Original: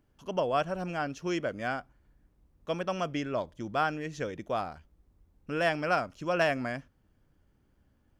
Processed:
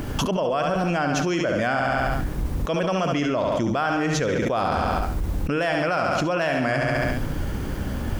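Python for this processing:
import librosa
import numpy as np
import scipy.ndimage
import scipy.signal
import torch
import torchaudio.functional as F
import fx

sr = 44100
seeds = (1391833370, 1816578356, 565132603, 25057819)

p1 = x + fx.echo_feedback(x, sr, ms=69, feedback_pct=51, wet_db=-8, dry=0)
y = fx.env_flatten(p1, sr, amount_pct=100)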